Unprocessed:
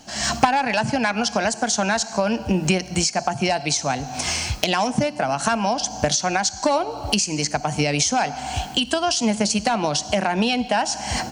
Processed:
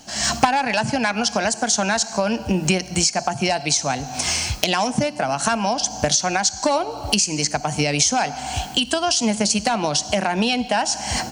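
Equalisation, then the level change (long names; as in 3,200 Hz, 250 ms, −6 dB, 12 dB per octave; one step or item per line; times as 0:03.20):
high-shelf EQ 4,700 Hz +5 dB
0.0 dB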